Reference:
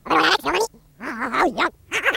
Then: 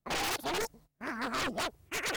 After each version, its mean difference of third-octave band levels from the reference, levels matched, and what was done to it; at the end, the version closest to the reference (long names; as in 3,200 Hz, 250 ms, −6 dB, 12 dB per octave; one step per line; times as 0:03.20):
7.0 dB: noise gate −44 dBFS, range −20 dB
parametric band 700 Hz +5 dB 0.29 octaves
wave folding −19 dBFS
level −8.5 dB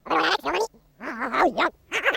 2.5 dB: graphic EQ with 15 bands 100 Hz −10 dB, 630 Hz +5 dB, 10,000 Hz −9 dB
speech leveller 2 s
pitch vibrato 1.1 Hz 15 cents
level −5.5 dB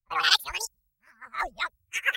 11.0 dB: spectral dynamics exaggerated over time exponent 1.5
guitar amp tone stack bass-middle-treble 10-0-10
multiband upward and downward expander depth 70%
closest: second